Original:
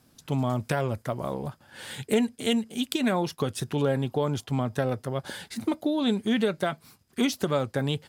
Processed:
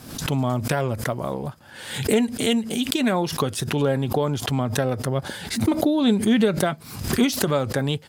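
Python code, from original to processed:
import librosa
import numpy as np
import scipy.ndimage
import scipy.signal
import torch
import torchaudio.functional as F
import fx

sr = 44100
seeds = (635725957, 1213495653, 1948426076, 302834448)

y = fx.low_shelf(x, sr, hz=330.0, db=4.5, at=(5.03, 7.24))
y = fx.pre_swell(y, sr, db_per_s=74.0)
y = F.gain(torch.from_numpy(y), 3.5).numpy()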